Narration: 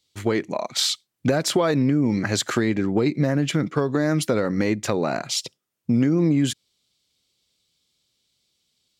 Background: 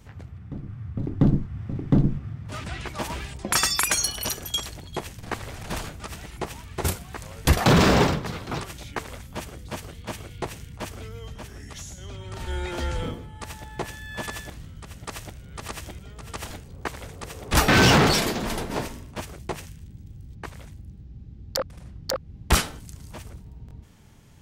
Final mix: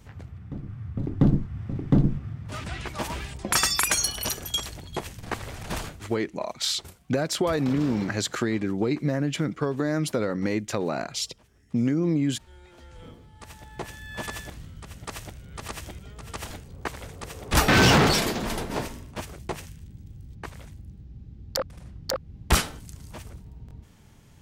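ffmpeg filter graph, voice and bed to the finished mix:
-filter_complex "[0:a]adelay=5850,volume=-4.5dB[a];[1:a]volume=19dB,afade=t=out:st=5.84:d=0.32:silence=0.1,afade=t=in:st=12.9:d=1.39:silence=0.105925[b];[a][b]amix=inputs=2:normalize=0"

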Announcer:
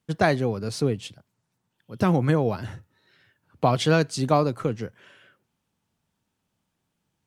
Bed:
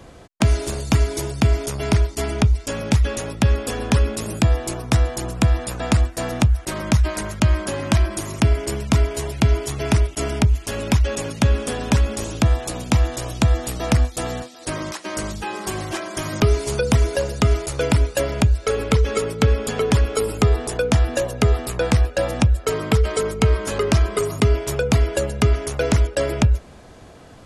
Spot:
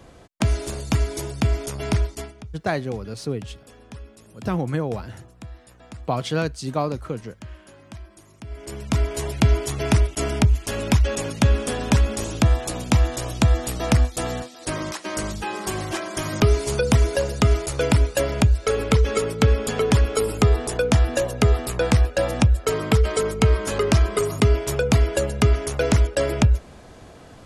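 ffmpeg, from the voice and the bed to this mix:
-filter_complex "[0:a]adelay=2450,volume=-3.5dB[a];[1:a]volume=18dB,afade=t=out:st=2.09:d=0.24:silence=0.11885,afade=t=in:st=8.46:d=0.83:silence=0.0794328[b];[a][b]amix=inputs=2:normalize=0"

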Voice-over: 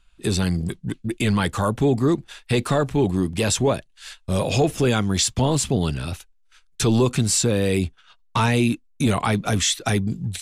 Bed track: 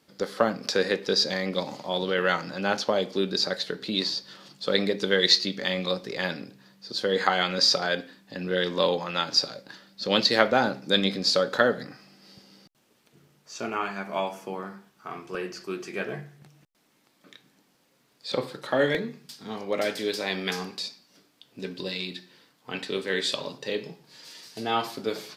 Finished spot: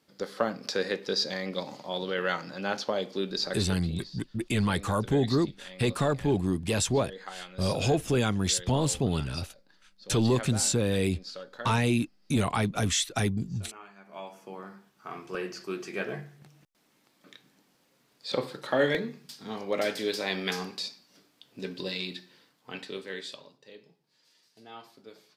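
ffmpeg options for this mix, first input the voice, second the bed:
-filter_complex "[0:a]adelay=3300,volume=-6dB[a];[1:a]volume=12.5dB,afade=t=out:st=3.69:d=0.27:silence=0.199526,afade=t=in:st=14.01:d=1.29:silence=0.133352,afade=t=out:st=22.09:d=1.42:silence=0.11885[b];[a][b]amix=inputs=2:normalize=0"

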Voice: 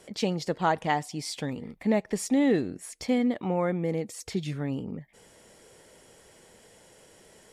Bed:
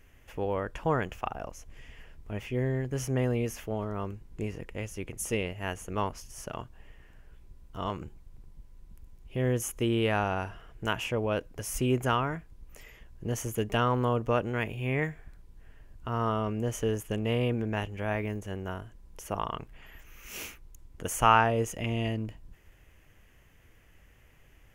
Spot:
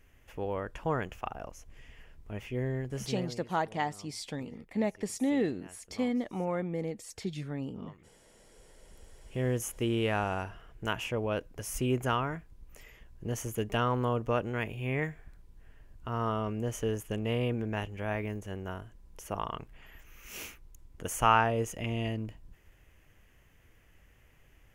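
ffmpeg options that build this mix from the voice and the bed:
-filter_complex "[0:a]adelay=2900,volume=-5.5dB[a];[1:a]volume=14dB,afade=t=out:st=2.88:d=0.51:silence=0.149624,afade=t=in:st=8.37:d=0.82:silence=0.133352[b];[a][b]amix=inputs=2:normalize=0"

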